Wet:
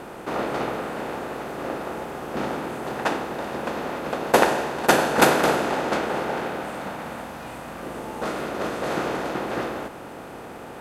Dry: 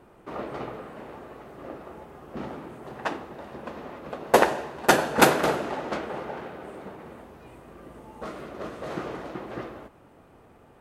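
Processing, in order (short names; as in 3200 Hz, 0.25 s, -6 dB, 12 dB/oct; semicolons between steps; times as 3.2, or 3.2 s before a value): per-bin compression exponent 0.6; 6.62–7.83 bell 390 Hz -9 dB 0.54 oct; gain -1 dB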